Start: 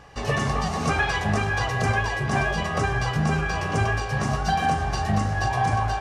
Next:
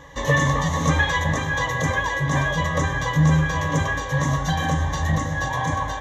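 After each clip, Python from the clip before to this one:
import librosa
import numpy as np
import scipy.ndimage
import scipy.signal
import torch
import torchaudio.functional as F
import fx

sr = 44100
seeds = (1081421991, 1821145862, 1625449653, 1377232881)

y = fx.rider(x, sr, range_db=10, speed_s=2.0)
y = fx.ripple_eq(y, sr, per_octave=1.1, db=16)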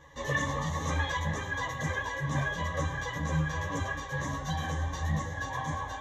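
y = fx.ensemble(x, sr)
y = F.gain(torch.from_numpy(y), -7.0).numpy()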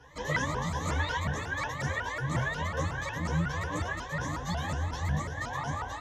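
y = fx.vibrato_shape(x, sr, shape='saw_up', rate_hz=5.5, depth_cents=250.0)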